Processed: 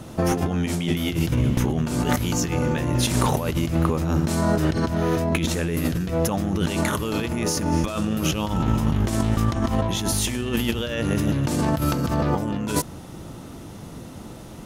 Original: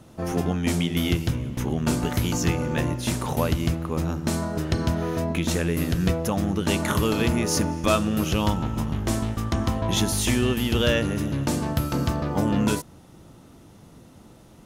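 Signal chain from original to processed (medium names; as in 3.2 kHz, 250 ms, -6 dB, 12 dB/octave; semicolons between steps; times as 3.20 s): compressor with a negative ratio -29 dBFS, ratio -1; trim +6 dB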